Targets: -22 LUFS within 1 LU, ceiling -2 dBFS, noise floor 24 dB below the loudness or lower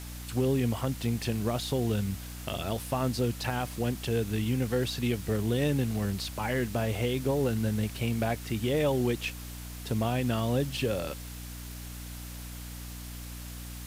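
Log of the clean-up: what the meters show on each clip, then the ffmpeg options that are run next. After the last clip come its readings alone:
hum 60 Hz; harmonics up to 300 Hz; hum level -40 dBFS; noise floor -41 dBFS; noise floor target -54 dBFS; loudness -30.0 LUFS; peak -16.5 dBFS; loudness target -22.0 LUFS
-> -af "bandreject=f=60:t=h:w=4,bandreject=f=120:t=h:w=4,bandreject=f=180:t=h:w=4,bandreject=f=240:t=h:w=4,bandreject=f=300:t=h:w=4"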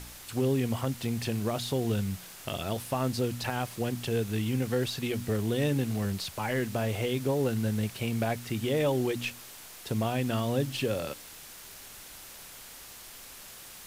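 hum none; noise floor -47 dBFS; noise floor target -55 dBFS
-> -af "afftdn=nr=8:nf=-47"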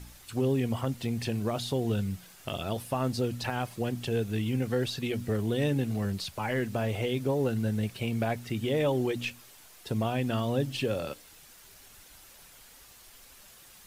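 noise floor -54 dBFS; noise floor target -55 dBFS
-> -af "afftdn=nr=6:nf=-54"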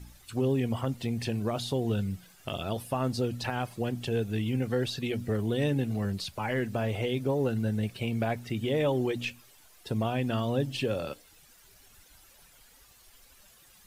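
noise floor -58 dBFS; loudness -31.0 LUFS; peak -17.0 dBFS; loudness target -22.0 LUFS
-> -af "volume=9dB"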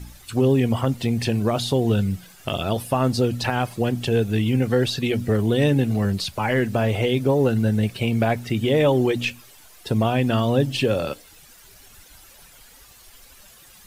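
loudness -22.0 LUFS; peak -8.0 dBFS; noise floor -49 dBFS

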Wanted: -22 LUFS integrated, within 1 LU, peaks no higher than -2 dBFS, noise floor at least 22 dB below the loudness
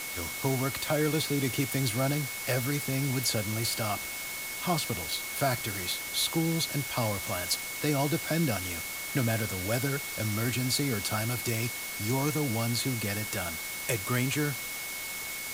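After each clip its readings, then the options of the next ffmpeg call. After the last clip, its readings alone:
steady tone 2200 Hz; tone level -39 dBFS; noise floor -37 dBFS; noise floor target -52 dBFS; loudness -29.5 LUFS; peak -14.5 dBFS; loudness target -22.0 LUFS
-> -af "bandreject=f=2.2k:w=30"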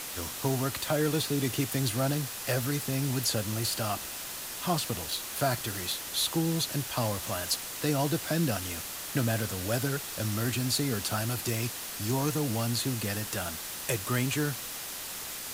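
steady tone none; noise floor -39 dBFS; noise floor target -52 dBFS
-> -af "afftdn=nr=13:nf=-39"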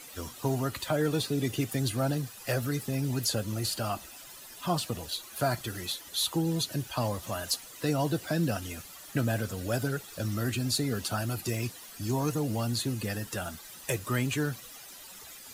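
noise floor -48 dBFS; noise floor target -54 dBFS
-> -af "afftdn=nr=6:nf=-48"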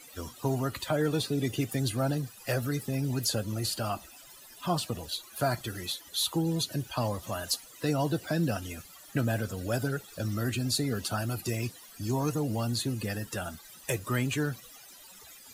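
noise floor -52 dBFS; noise floor target -54 dBFS
-> -af "afftdn=nr=6:nf=-52"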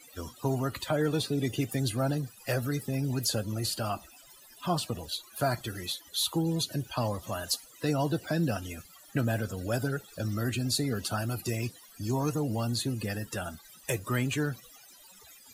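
noise floor -55 dBFS; loudness -31.5 LUFS; peak -15.0 dBFS; loudness target -22.0 LUFS
-> -af "volume=9.5dB"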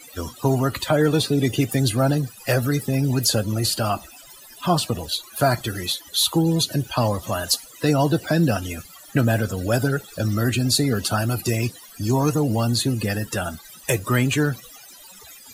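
loudness -22.0 LUFS; peak -5.5 dBFS; noise floor -45 dBFS

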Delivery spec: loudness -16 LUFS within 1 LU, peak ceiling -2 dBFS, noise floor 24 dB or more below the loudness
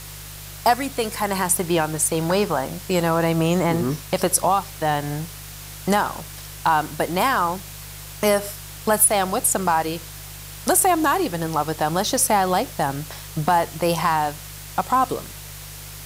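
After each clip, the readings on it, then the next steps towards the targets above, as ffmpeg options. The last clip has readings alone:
hum 50 Hz; harmonics up to 150 Hz; hum level -38 dBFS; noise floor -37 dBFS; noise floor target -46 dBFS; loudness -21.5 LUFS; peak -4.0 dBFS; loudness target -16.0 LUFS
-> -af "bandreject=f=50:t=h:w=4,bandreject=f=100:t=h:w=4,bandreject=f=150:t=h:w=4"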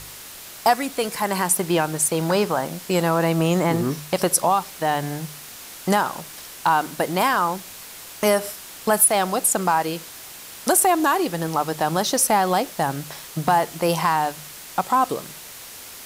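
hum none; noise floor -40 dBFS; noise floor target -46 dBFS
-> -af "afftdn=nr=6:nf=-40"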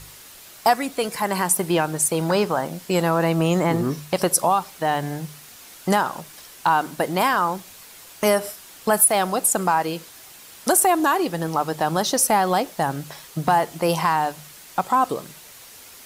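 noise floor -45 dBFS; noise floor target -46 dBFS
-> -af "afftdn=nr=6:nf=-45"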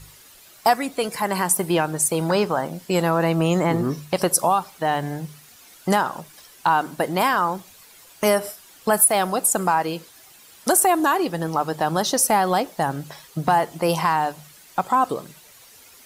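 noise floor -49 dBFS; loudness -21.5 LUFS; peak -4.0 dBFS; loudness target -16.0 LUFS
-> -af "volume=5.5dB,alimiter=limit=-2dB:level=0:latency=1"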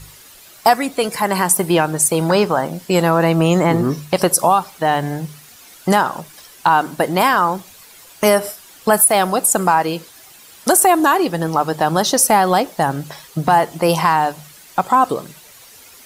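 loudness -16.0 LUFS; peak -2.0 dBFS; noise floor -44 dBFS

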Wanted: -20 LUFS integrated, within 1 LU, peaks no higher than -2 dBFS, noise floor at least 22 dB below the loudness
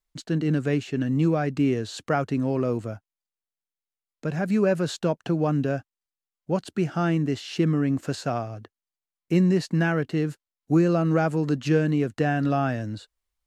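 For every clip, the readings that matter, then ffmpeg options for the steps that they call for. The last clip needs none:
loudness -25.0 LUFS; peak -9.5 dBFS; loudness target -20.0 LUFS
-> -af "volume=5dB"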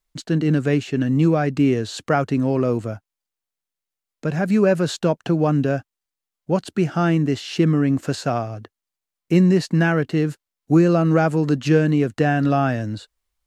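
loudness -20.0 LUFS; peak -4.5 dBFS; noise floor -86 dBFS

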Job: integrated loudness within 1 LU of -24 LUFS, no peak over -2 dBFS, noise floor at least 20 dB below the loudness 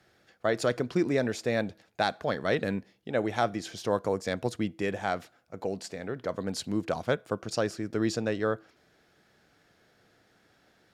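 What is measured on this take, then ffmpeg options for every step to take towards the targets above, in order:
loudness -31.0 LUFS; peak -13.0 dBFS; loudness target -24.0 LUFS
-> -af "volume=7dB"

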